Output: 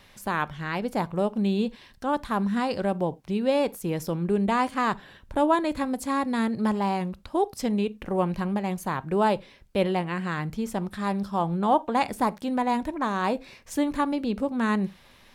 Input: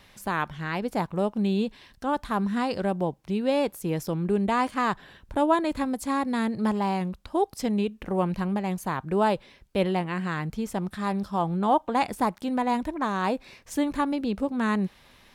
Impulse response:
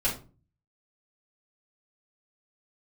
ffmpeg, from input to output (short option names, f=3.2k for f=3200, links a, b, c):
-filter_complex "[0:a]asplit=2[a][b];[1:a]atrim=start_sample=2205,atrim=end_sample=4410[c];[b][c]afir=irnorm=-1:irlink=0,volume=-24.5dB[d];[a][d]amix=inputs=2:normalize=0"